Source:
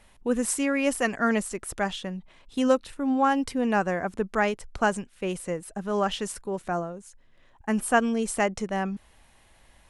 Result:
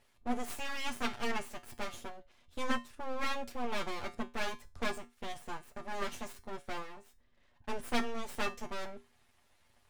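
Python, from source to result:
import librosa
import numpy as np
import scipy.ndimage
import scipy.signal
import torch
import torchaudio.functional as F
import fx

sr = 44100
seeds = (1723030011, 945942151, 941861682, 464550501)

y = fx.lower_of_two(x, sr, delay_ms=8.3)
y = fx.high_shelf(y, sr, hz=9700.0, db=-8.0)
y = np.abs(y)
y = fx.comb_fb(y, sr, f0_hz=80.0, decay_s=0.26, harmonics='odd', damping=0.0, mix_pct=70)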